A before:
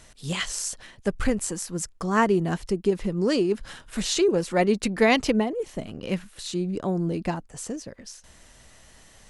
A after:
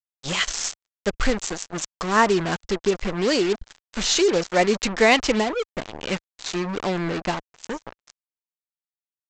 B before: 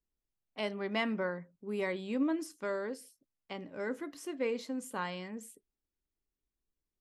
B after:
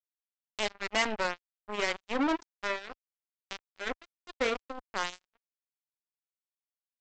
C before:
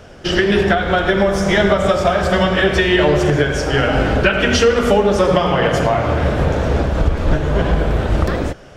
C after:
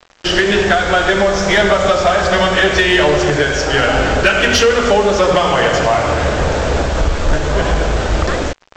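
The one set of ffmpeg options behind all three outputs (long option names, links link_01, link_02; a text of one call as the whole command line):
ffmpeg -i in.wav -af "aresample=16000,acrusher=bits=4:mix=0:aa=0.5,aresample=44100,equalizer=frequency=140:width=0.4:gain=-8.5,acontrast=82,volume=-1dB" out.wav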